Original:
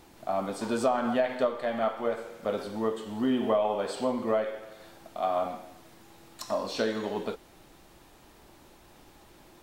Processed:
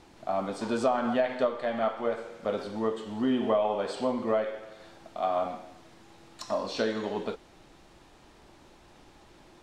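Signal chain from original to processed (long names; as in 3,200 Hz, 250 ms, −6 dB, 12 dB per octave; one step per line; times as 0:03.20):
low-pass filter 7,200 Hz 12 dB per octave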